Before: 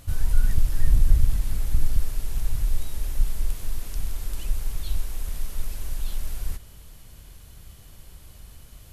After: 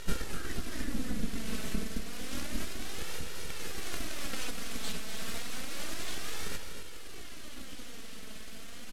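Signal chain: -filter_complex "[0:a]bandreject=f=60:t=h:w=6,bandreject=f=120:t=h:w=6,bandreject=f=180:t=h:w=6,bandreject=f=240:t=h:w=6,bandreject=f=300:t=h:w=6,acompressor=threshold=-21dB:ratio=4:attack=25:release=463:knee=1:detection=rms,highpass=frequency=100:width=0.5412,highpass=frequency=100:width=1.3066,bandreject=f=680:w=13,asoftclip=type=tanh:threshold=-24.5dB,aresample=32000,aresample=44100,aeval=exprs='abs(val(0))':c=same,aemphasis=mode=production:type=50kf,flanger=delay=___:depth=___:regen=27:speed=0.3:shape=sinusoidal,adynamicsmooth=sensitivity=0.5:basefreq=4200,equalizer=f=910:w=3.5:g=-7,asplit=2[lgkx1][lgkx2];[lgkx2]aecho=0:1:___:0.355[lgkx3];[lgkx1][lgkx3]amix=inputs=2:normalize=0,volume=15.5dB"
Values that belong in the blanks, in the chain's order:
2.1, 2.5, 247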